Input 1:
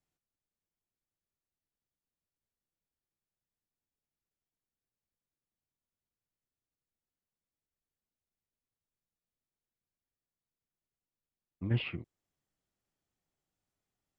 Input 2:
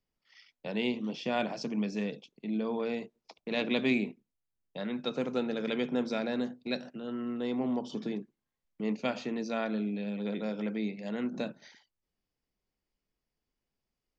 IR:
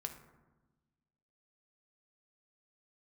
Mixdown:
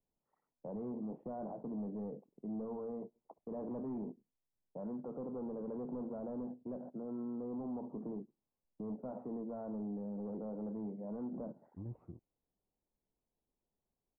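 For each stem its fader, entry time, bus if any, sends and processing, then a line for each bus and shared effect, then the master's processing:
-10.0 dB, 0.15 s, no send, none
-0.5 dB, 0.00 s, no send, bass shelf 160 Hz -4.5 dB; saturation -31 dBFS, distortion -11 dB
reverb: none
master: steep low-pass 1 kHz 36 dB/octave; peak limiter -36 dBFS, peak gain reduction 7 dB

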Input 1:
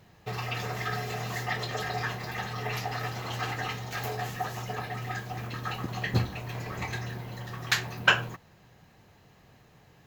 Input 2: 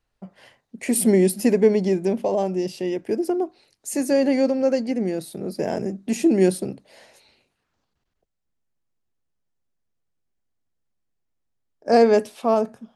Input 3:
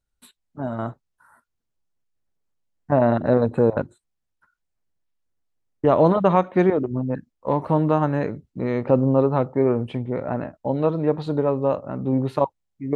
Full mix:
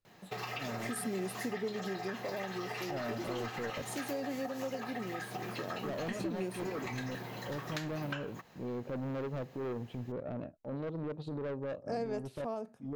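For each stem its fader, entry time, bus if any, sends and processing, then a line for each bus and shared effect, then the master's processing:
+1.0 dB, 0.05 s, no send, high-pass 200 Hz 12 dB/octave; compression 6:1, threshold -35 dBFS, peak gain reduction 18.5 dB
-12.5 dB, 0.00 s, no send, none
-5.5 dB, 0.00 s, no send, high-order bell 1.3 kHz -8.5 dB; transient shaper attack -12 dB, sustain -8 dB; saturation -25.5 dBFS, distortion -7 dB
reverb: none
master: compression 2.5:1, threshold -37 dBFS, peak gain reduction 10 dB

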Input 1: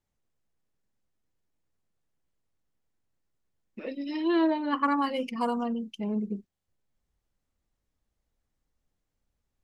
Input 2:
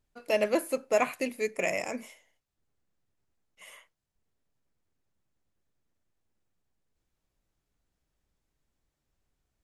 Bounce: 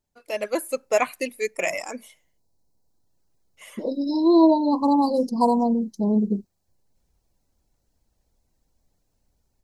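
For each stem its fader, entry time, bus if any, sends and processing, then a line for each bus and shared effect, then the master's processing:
+1.0 dB, 0.00 s, no send, Chebyshev band-stop 1–4 kHz, order 5
-4.0 dB, 0.00 s, no send, reverb removal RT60 1.2 s; tone controls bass -8 dB, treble +2 dB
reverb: none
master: level rider gain up to 9 dB

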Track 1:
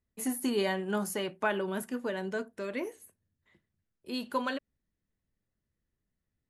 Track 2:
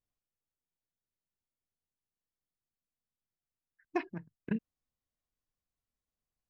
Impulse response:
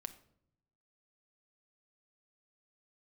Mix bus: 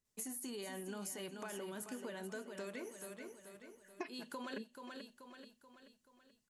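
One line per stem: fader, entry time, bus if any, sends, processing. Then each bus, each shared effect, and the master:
-4.5 dB, 0.00 s, no send, echo send -10 dB, peaking EQ 63 Hz -13.5 dB 0.68 oct; peak limiter -27 dBFS, peak gain reduction 11 dB
+0.5 dB, 0.05 s, no send, echo send -22 dB, steep high-pass 260 Hz; comb 4.7 ms, depth 76%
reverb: none
echo: feedback delay 432 ms, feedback 48%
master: peaking EQ 7.2 kHz +10 dB 1.4 oct; compression 6:1, threshold -42 dBFS, peak gain reduction 15 dB

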